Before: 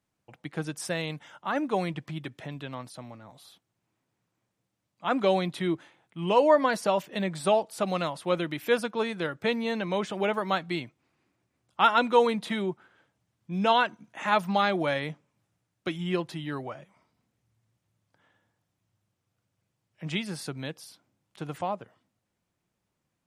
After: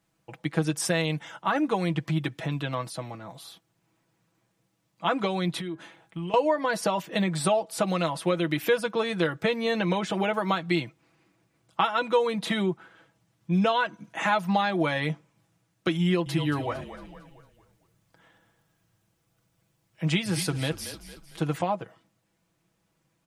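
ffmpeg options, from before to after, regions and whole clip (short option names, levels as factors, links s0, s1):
-filter_complex "[0:a]asettb=1/sr,asplit=3[s0][s1][s2];[s0]atrim=end=5.584[s3];[s1]atrim=start=5.58:end=6.34,asetpts=PTS-STARTPTS,afade=t=in:d=0.004:c=qsin,afade=t=out:st=0.756:d=0.004:c=qsin,bandreject=f=205.4:t=h:w=4,bandreject=f=410.8:t=h:w=4,bandreject=f=616.2:t=h:w=4,bandreject=f=821.6:t=h:w=4,bandreject=f=1027:t=h:w=4,bandreject=f=1232.4:t=h:w=4,bandreject=f=1437.8:t=h:w=4,bandreject=f=1643.2:t=h:w=4,acompressor=threshold=0.0112:ratio=20:attack=3.2:release=140:knee=1:detection=peak[s4];[s2]atrim=start=6.336[s5];[s3][s4]acrossfade=d=0.004:c1=hsin:c2=qsin[s6];[s6][s5]acrossfade=d=0.004:c1=qsin:c2=hsin,asettb=1/sr,asplit=3[s7][s8][s9];[s7]atrim=end=16.034[s10];[s8]atrim=start=16.03:end=21.44,asetpts=PTS-STARTPTS,afade=t=in:d=0.004:c=qsin,afade=t=out:st=5.406:d=0.004:c=qsin,highshelf=f=11000:g=6.5,asplit=6[s11][s12][s13][s14][s15][s16];[s12]adelay=227,afreqshift=-40,volume=0.224[s17];[s13]adelay=454,afreqshift=-80,volume=0.105[s18];[s14]adelay=681,afreqshift=-120,volume=0.0495[s19];[s15]adelay=908,afreqshift=-160,volume=0.0232[s20];[s16]adelay=1135,afreqshift=-200,volume=0.011[s21];[s11][s17][s18][s19][s20][s21]amix=inputs=6:normalize=0,atrim=end_sample=238581[s22];[s9]atrim=start=21.436[s23];[s10][s22]acrossfade=d=0.004:c1=hsin:c2=qsin[s24];[s24][s23]acrossfade=d=0.004:c1=qsin:c2=hsin,acompressor=threshold=0.0355:ratio=6,aecho=1:1:6.1:0.55,volume=2.11"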